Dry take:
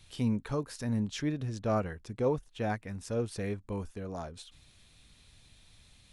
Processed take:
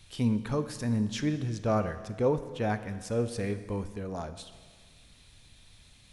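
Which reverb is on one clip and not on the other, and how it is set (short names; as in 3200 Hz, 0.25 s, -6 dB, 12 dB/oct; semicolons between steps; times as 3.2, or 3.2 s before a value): Schroeder reverb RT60 1.7 s, combs from 26 ms, DRR 11 dB; gain +2.5 dB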